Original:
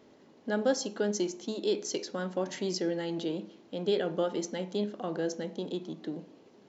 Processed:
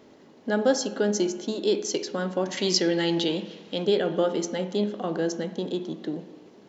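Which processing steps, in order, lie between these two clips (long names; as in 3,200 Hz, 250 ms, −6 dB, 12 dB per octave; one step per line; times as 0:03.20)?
0:02.57–0:03.85: parametric band 3,500 Hz +9.5 dB 2.4 octaves
spring reverb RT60 1.6 s, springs 53/59 ms, chirp 45 ms, DRR 13.5 dB
level +5.5 dB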